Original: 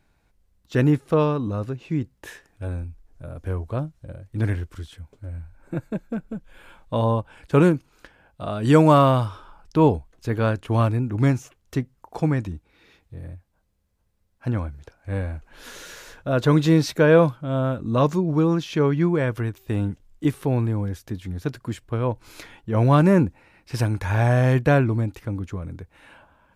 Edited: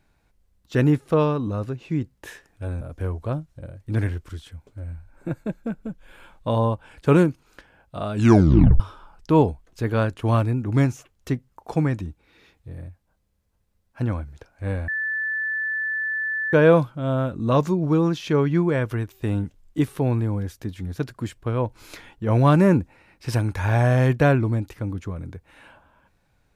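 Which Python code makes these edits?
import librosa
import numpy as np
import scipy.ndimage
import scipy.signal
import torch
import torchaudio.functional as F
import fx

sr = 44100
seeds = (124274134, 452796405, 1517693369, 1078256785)

y = fx.edit(x, sr, fx.cut(start_s=2.81, length_s=0.46),
    fx.tape_stop(start_s=8.6, length_s=0.66),
    fx.bleep(start_s=15.34, length_s=1.65, hz=1750.0, db=-23.0), tone=tone)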